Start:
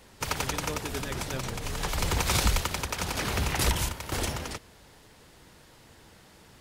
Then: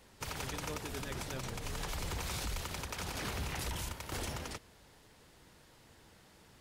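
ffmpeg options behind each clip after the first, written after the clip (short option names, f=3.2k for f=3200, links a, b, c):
-af "alimiter=limit=-23dB:level=0:latency=1:release=36,volume=-6.5dB"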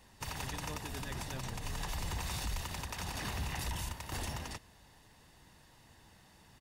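-af "aecho=1:1:1.1:0.39,volume=-1dB"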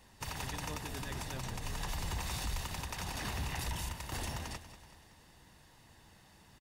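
-af "aecho=1:1:189|378|567|756|945:0.211|0.112|0.0594|0.0315|0.0167"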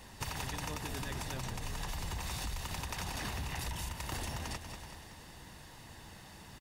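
-af "acompressor=threshold=-45dB:ratio=5,volume=8.5dB"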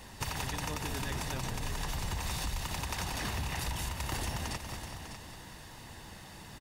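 -af "aecho=1:1:599:0.316,volume=3dB"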